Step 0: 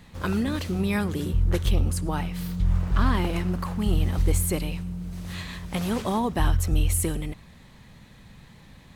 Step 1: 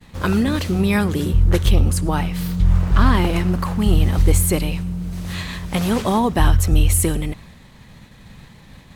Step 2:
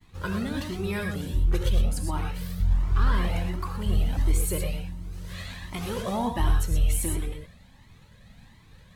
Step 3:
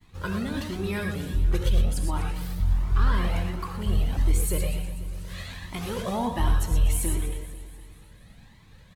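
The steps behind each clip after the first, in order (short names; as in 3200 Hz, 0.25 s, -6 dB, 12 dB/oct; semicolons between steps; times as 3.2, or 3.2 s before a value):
expander -46 dBFS; gain +7.5 dB
soft clip -3 dBFS, distortion -25 dB; non-linear reverb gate 0.14 s rising, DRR 2.5 dB; cascading flanger rising 1.4 Hz; gain -7 dB
feedback echo 0.245 s, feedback 50%, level -14 dB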